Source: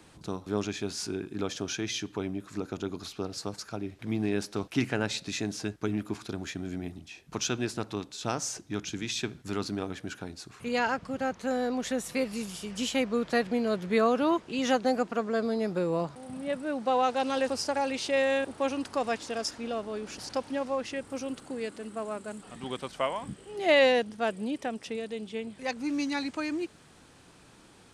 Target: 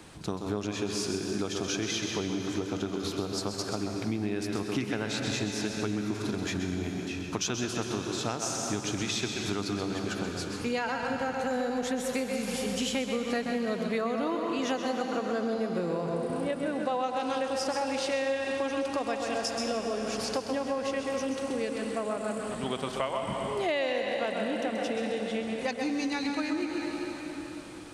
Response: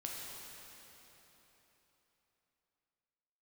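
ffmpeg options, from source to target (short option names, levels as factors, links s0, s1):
-filter_complex "[0:a]asplit=2[s0][s1];[1:a]atrim=start_sample=2205,adelay=130[s2];[s1][s2]afir=irnorm=-1:irlink=0,volume=0.75[s3];[s0][s3]amix=inputs=2:normalize=0,acompressor=threshold=0.0224:ratio=6,volume=1.88"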